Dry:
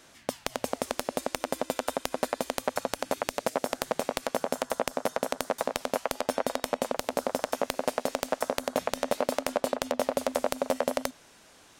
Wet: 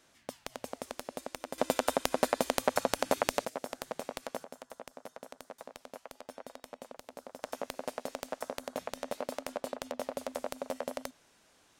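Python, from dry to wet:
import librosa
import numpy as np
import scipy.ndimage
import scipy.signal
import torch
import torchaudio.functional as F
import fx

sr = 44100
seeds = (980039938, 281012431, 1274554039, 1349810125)

y = fx.gain(x, sr, db=fx.steps((0.0, -10.0), (1.58, 1.0), (3.45, -9.5), (4.44, -18.0), (7.43, -9.5)))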